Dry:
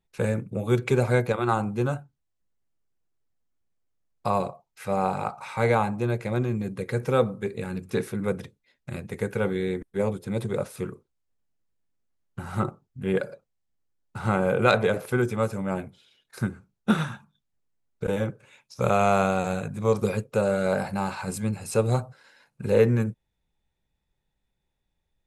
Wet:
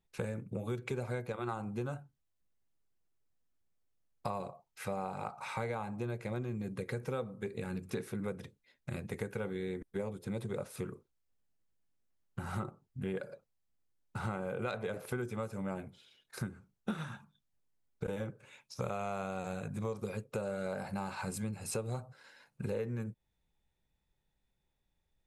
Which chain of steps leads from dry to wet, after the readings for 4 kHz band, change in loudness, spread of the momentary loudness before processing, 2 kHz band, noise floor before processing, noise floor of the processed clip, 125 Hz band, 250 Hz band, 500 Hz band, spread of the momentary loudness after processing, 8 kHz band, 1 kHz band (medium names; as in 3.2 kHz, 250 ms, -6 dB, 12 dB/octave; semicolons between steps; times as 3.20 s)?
-12.0 dB, -13.0 dB, 12 LU, -13.0 dB, -78 dBFS, -81 dBFS, -12.0 dB, -12.0 dB, -14.0 dB, 8 LU, -7.5 dB, -14.0 dB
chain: compression 6:1, threshold -32 dBFS, peak gain reduction 17 dB; trim -2.5 dB